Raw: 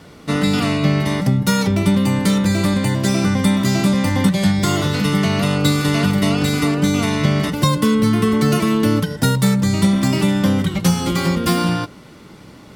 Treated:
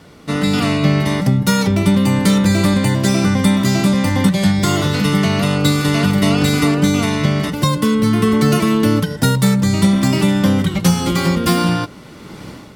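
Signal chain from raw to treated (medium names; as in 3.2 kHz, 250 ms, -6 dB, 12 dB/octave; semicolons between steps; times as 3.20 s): level rider; trim -1 dB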